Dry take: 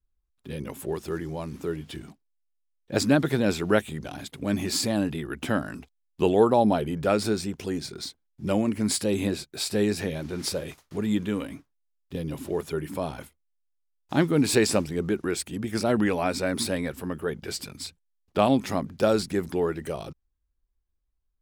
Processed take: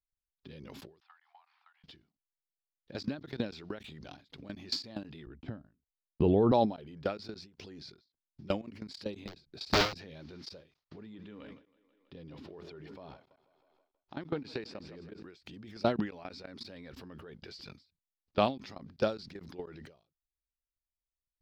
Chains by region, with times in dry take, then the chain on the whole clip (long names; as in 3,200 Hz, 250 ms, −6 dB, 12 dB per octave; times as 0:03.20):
0:01.00–0:01.84: Butterworth high-pass 740 Hz 96 dB per octave + high-frequency loss of the air 410 metres
0:05.26–0:06.52: notch filter 5,900 Hz, Q 16 + noise gate −45 dBFS, range −44 dB + spectral tilt −4 dB per octave
0:09.27–0:09.98: low-shelf EQ 490 Hz +11 dB + wrap-around overflow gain 13.5 dB
0:10.83–0:15.23: low-pass filter 2,200 Hz 6 dB per octave + low-shelf EQ 280 Hz −4.5 dB + echo with a time of its own for lows and highs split 310 Hz, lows 82 ms, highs 162 ms, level −13.5 dB
whole clip: high shelf with overshoot 6,600 Hz −13 dB, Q 3; output level in coarse steps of 24 dB; every ending faded ahead of time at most 160 dB per second